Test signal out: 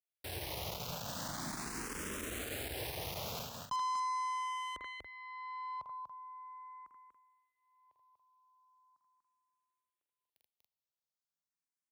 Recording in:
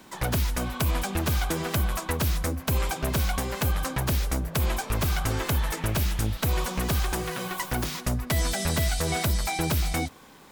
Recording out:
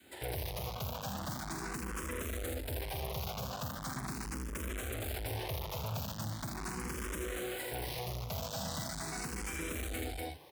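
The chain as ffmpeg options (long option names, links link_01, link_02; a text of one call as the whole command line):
ffmpeg -i in.wav -filter_complex "[0:a]adynamicequalizer=threshold=0.01:dfrequency=520:dqfactor=1.2:tfrequency=520:tqfactor=1.2:attack=5:release=100:ratio=0.375:range=2:mode=boostabove:tftype=bell,asplit=2[link_01][link_02];[link_02]aecho=0:1:46.65|81.63|242|282.8:0.501|0.562|0.562|0.282[link_03];[link_01][link_03]amix=inputs=2:normalize=0,aeval=exprs='(tanh(39.8*val(0)+0.75)-tanh(0.75))/39.8':channel_layout=same,highpass=56,asplit=2[link_04][link_05];[link_05]afreqshift=0.4[link_06];[link_04][link_06]amix=inputs=2:normalize=1,volume=-1.5dB" out.wav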